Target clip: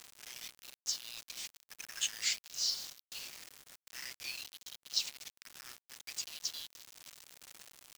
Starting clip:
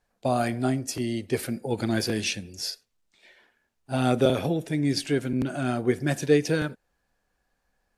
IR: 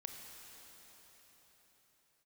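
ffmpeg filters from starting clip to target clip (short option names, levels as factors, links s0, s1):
-filter_complex "[0:a]aeval=exprs='val(0)+0.5*0.02*sgn(val(0))':c=same,asplit=2[s0][s1];[s1]aecho=0:1:296|592|888:0.1|0.043|0.0185[s2];[s0][s2]amix=inputs=2:normalize=0,asoftclip=type=hard:threshold=0.133,asuperpass=centerf=6000:order=20:qfactor=0.83,aresample=16000,aresample=44100,acrusher=bits=6:mix=0:aa=0.000001,aeval=exprs='val(0)*sin(2*PI*1100*n/s+1100*0.7/0.53*sin(2*PI*0.53*n/s))':c=same"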